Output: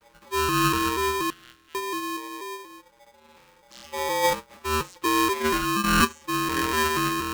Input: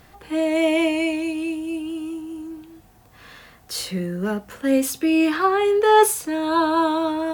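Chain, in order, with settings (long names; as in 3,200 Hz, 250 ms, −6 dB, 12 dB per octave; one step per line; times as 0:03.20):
vocoder with an arpeggio as carrier major triad, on B2, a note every 240 ms
0:01.30–0:01.75: inverse Chebyshev high-pass filter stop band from 230 Hz, stop band 60 dB
ring modulator with a square carrier 700 Hz
level −3.5 dB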